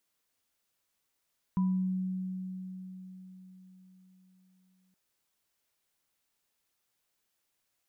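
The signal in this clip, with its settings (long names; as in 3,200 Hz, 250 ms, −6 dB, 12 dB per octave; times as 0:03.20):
inharmonic partials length 3.37 s, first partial 186 Hz, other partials 988 Hz, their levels −13.5 dB, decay 4.53 s, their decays 0.46 s, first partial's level −24 dB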